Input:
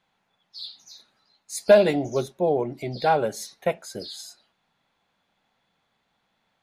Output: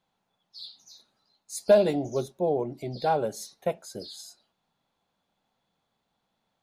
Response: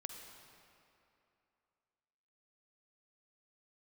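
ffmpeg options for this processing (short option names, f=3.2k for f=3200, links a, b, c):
-af "equalizer=f=2k:t=o:w=1.3:g=-8,volume=-3dB"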